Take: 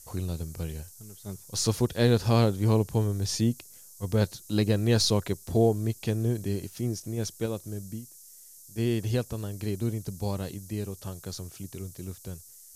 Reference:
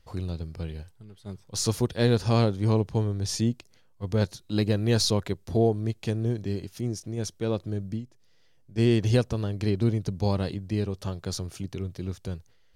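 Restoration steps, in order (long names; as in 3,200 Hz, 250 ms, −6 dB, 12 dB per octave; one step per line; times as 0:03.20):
noise reduction from a noise print 8 dB
level correction +5.5 dB, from 0:07.46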